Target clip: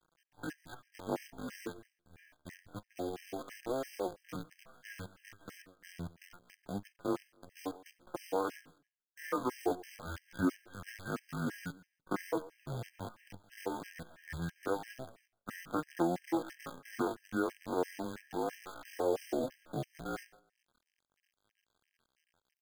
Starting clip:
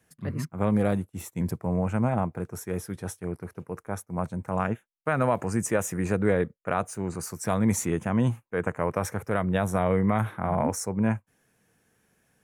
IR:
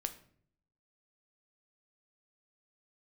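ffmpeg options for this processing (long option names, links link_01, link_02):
-af "equalizer=frequency=1300:width_type=o:width=0.44:gain=-5.5,aecho=1:1:5.3:0.33,acompressor=threshold=-25dB:ratio=16,highpass=frequency=520:width_type=q:width=0.5412,highpass=frequency=520:width_type=q:width=1.307,lowpass=frequency=2100:width_type=q:width=0.5176,lowpass=frequency=2100:width_type=q:width=0.7071,lowpass=frequency=2100:width_type=q:width=1.932,afreqshift=-260,acontrast=28,flanger=delay=5.3:depth=7.1:regen=30:speed=0.45:shape=triangular,acrusher=bits=8:dc=4:mix=0:aa=0.000001,aecho=1:1:79|158:0.0794|0.0191,atempo=0.55,afftfilt=real='re*gt(sin(2*PI*3*pts/sr)*(1-2*mod(floor(b*sr/1024/1600),2)),0)':imag='im*gt(sin(2*PI*3*pts/sr)*(1-2*mod(floor(b*sr/1024/1600),2)),0)':win_size=1024:overlap=0.75,volume=1dB"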